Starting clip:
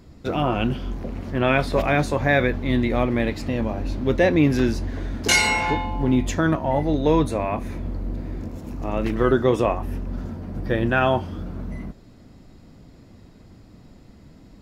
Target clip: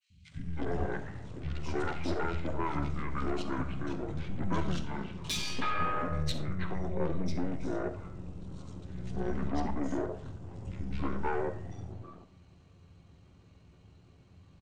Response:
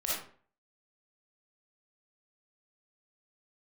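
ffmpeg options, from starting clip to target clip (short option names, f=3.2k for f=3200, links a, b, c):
-filter_complex "[0:a]highpass=110,equalizer=f=9.7k:w=1.1:g=4,aecho=1:1:6.5:0.97,acompressor=threshold=-17dB:ratio=6,asetrate=25476,aresample=44100,atempo=1.73107,aeval=exprs='(tanh(11.2*val(0)+0.75)-tanh(0.75))/11.2':c=same,acrossover=split=190|2400[a][b][c];[a]adelay=100[d];[b]adelay=320[e];[d][e][c]amix=inputs=3:normalize=0,asplit=2[f][g];[1:a]atrim=start_sample=2205[h];[g][h]afir=irnorm=-1:irlink=0,volume=-14dB[i];[f][i]amix=inputs=2:normalize=0,adynamicequalizer=threshold=0.0158:dfrequency=1800:dqfactor=0.7:tfrequency=1800:tqfactor=0.7:attack=5:release=100:ratio=0.375:range=1.5:mode=boostabove:tftype=highshelf,volume=-6dB"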